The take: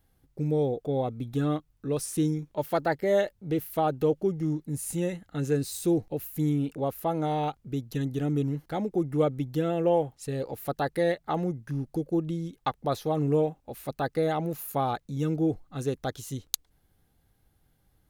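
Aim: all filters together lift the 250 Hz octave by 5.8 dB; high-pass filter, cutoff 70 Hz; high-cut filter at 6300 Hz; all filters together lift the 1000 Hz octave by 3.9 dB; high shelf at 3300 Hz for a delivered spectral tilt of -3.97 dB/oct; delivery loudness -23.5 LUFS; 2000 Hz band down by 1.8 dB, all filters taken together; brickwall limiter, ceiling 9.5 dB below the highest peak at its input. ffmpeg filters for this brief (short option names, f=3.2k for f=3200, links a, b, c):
-af "highpass=70,lowpass=6.3k,equalizer=f=250:t=o:g=8,equalizer=f=1k:t=o:g=5.5,equalizer=f=2k:t=o:g=-7,highshelf=f=3.3k:g=8,volume=3.5dB,alimiter=limit=-12dB:level=0:latency=1"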